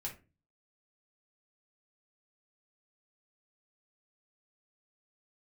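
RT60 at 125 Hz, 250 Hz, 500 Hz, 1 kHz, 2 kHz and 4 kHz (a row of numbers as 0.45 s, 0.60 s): 0.55 s, 0.45 s, 0.35 s, 0.25 s, 0.25 s, 0.20 s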